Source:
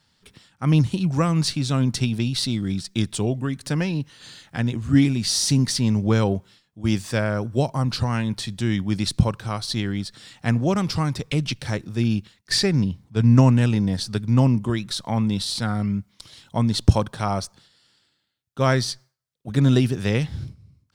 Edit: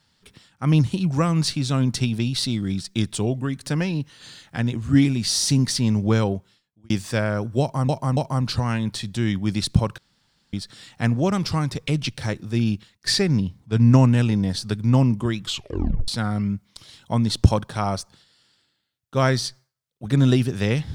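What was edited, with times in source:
6.15–6.90 s: fade out
7.61–7.89 s: loop, 3 plays
9.42–9.97 s: room tone
14.83 s: tape stop 0.69 s

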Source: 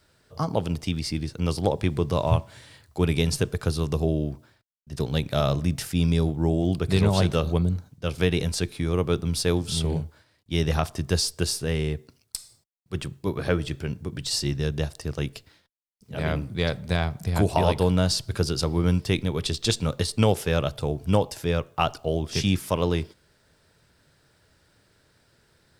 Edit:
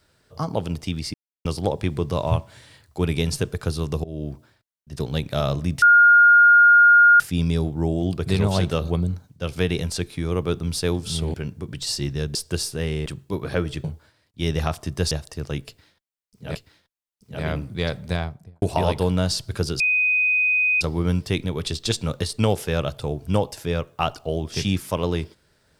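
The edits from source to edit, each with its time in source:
1.14–1.45 s: mute
4.04–4.31 s: fade in, from -23 dB
5.82 s: add tone 1.42 kHz -9 dBFS 1.38 s
9.96–11.23 s: swap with 13.78–14.79 s
11.94–13.00 s: delete
15.35–16.23 s: loop, 2 plays
16.87–17.42 s: studio fade out
18.60 s: add tone 2.5 kHz -16.5 dBFS 1.01 s

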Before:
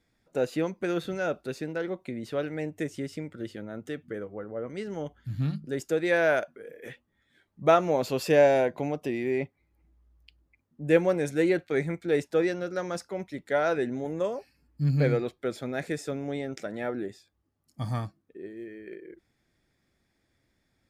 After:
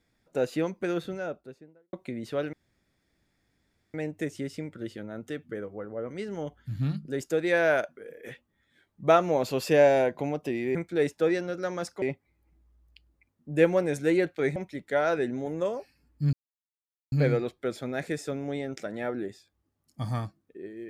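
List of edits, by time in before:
0.75–1.93 s: studio fade out
2.53 s: insert room tone 1.41 s
11.88–13.15 s: move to 9.34 s
14.92 s: insert silence 0.79 s

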